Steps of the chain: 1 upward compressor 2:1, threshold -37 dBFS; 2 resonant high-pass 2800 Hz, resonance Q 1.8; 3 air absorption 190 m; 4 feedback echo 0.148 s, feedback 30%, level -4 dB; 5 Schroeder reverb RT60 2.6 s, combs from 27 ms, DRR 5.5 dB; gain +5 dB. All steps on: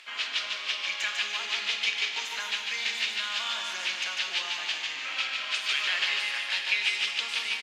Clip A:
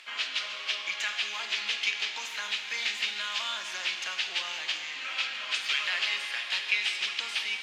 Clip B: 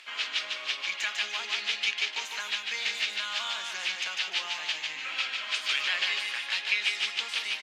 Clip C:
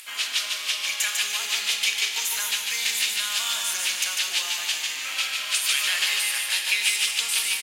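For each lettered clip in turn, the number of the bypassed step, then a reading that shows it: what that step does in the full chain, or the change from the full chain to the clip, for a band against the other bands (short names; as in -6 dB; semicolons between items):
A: 4, echo-to-direct -1.0 dB to -5.5 dB; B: 5, echo-to-direct -1.0 dB to -3.5 dB; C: 3, 8 kHz band +14.0 dB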